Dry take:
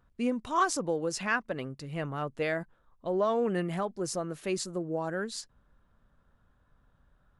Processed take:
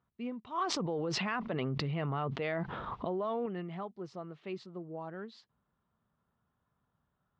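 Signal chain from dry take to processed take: speaker cabinet 120–3500 Hz, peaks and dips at 290 Hz -6 dB, 540 Hz -7 dB, 1600 Hz -8 dB, 2500 Hz -3 dB; 0.64–3.46 fast leveller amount 100%; gain -6.5 dB

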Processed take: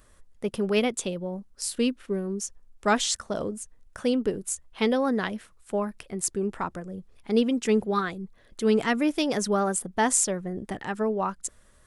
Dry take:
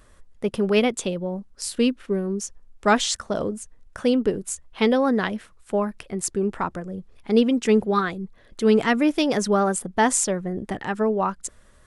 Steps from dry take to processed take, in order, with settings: high shelf 7000 Hz +7 dB; gain -4.5 dB

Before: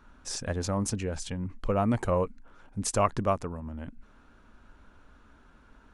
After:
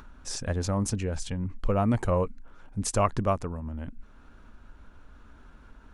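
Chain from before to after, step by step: low shelf 110 Hz +6.5 dB; upward compressor, threshold -44 dBFS

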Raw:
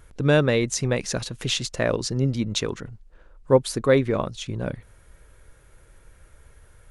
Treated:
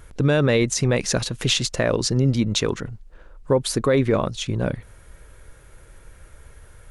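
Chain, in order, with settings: limiter -15 dBFS, peak gain reduction 9.5 dB; gain +5.5 dB

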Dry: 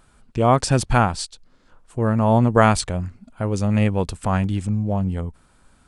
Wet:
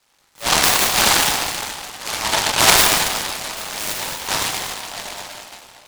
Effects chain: low-pass opened by the level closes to 1200 Hz, open at -13 dBFS; steep high-pass 810 Hz 36 dB/oct; high shelf 6000 Hz +11.5 dB; reverb RT60 2.7 s, pre-delay 5 ms, DRR -9 dB; noise-modulated delay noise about 2700 Hz, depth 0.22 ms; gain -1.5 dB

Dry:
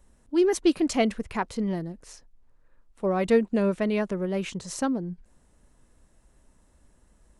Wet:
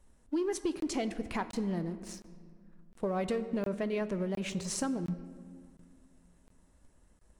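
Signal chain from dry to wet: sample leveller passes 1; compressor 6:1, threshold -28 dBFS, peak gain reduction 13 dB; on a send at -11 dB: reverb RT60 2.0 s, pre-delay 6 ms; on the sum: crackling interface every 0.71 s, samples 1024, zero, from 0.8; gain -2.5 dB; Vorbis 96 kbps 44100 Hz

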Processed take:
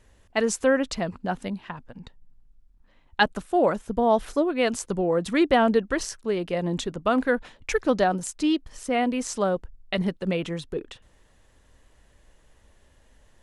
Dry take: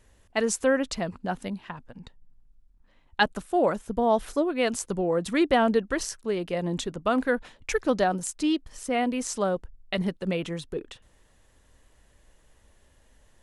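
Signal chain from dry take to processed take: high shelf 10000 Hz -8 dB; gain +2 dB

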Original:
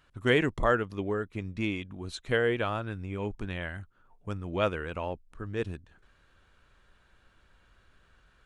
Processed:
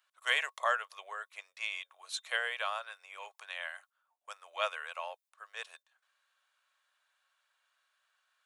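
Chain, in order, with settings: steep high-pass 570 Hz 48 dB/oct; gate -58 dBFS, range -9 dB; tilt +3 dB/oct; small resonant body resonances 1100/3600 Hz, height 9 dB, ringing for 85 ms; gain -4 dB

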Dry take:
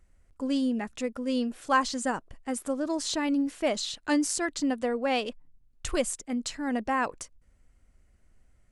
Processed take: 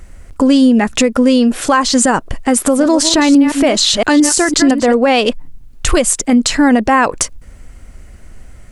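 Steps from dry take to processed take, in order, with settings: 2.5–4.96 reverse delay 0.17 s, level -10 dB; compressor 6:1, threshold -32 dBFS, peak gain reduction 13.5 dB; maximiser +27 dB; gain -1 dB

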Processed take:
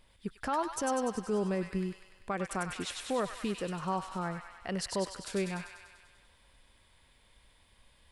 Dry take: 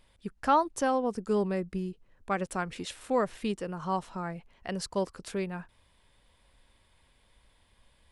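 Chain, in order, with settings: limiter -23.5 dBFS, peak gain reduction 10 dB; thin delay 98 ms, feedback 66%, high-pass 1500 Hz, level -3 dB

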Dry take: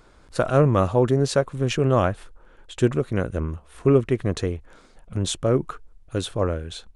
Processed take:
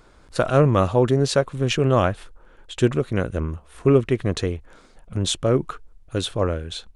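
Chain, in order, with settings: dynamic EQ 3400 Hz, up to +4 dB, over -44 dBFS, Q 0.96; gain +1 dB

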